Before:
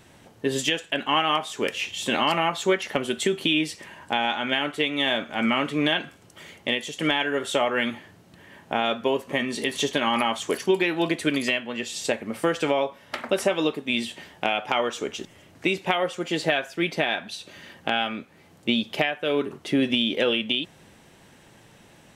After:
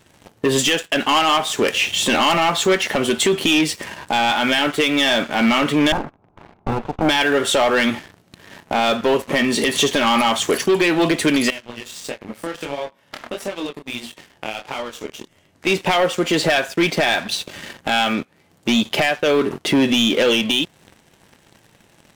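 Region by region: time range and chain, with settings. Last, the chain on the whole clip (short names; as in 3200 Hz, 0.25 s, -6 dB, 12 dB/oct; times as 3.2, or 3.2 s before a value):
5.92–7.09 minimum comb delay 0.8 ms + synth low-pass 760 Hz, resonance Q 2.5
11.5–15.67 compressor 2:1, threshold -45 dBFS + chorus 1.5 Hz, delay 20 ms, depth 7.4 ms
whole clip: sample leveller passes 3; compressor 1.5:1, threshold -22 dBFS; maximiser +11.5 dB; gain -9 dB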